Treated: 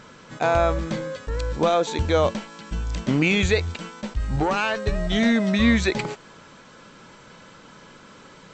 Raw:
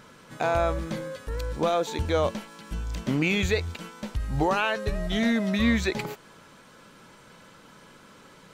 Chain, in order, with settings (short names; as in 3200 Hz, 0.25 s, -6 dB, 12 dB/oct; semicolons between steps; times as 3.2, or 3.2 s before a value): 4.36–4.87 tube stage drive 19 dB, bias 0.4; brick-wall FIR low-pass 8200 Hz; attack slew limiter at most 570 dB/s; gain +4.5 dB